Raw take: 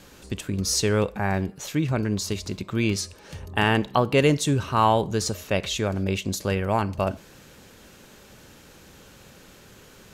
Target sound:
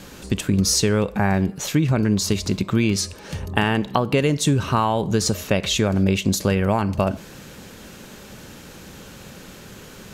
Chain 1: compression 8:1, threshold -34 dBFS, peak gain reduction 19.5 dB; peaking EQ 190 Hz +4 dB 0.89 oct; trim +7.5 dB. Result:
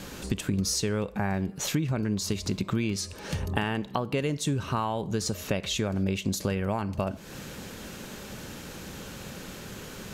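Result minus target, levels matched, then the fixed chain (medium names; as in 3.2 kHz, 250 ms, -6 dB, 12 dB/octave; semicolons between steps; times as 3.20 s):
compression: peak gain reduction +9 dB
compression 8:1, threshold -23.5 dBFS, peak gain reduction 10.5 dB; peaking EQ 190 Hz +4 dB 0.89 oct; trim +7.5 dB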